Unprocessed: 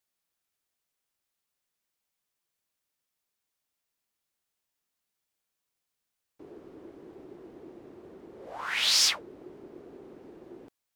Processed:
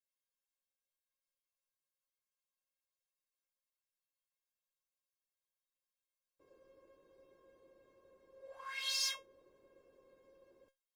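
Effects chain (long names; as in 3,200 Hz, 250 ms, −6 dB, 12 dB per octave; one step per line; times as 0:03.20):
tuned comb filter 540 Hz, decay 0.17 s, harmonics all, mix 100%
level +2 dB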